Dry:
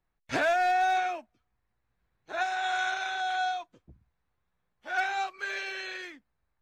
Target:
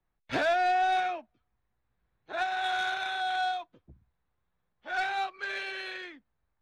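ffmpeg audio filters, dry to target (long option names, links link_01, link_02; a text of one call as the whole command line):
ffmpeg -i in.wav -filter_complex "[0:a]equalizer=frequency=3700:width_type=o:width=0.66:gain=6.5,acrossover=split=140|870|3000[link_01][link_02][link_03][link_04];[link_03]asoftclip=type=hard:threshold=-29.5dB[link_05];[link_01][link_02][link_05][link_04]amix=inputs=4:normalize=0,adynamicsmooth=sensitivity=2:basefreq=3000" out.wav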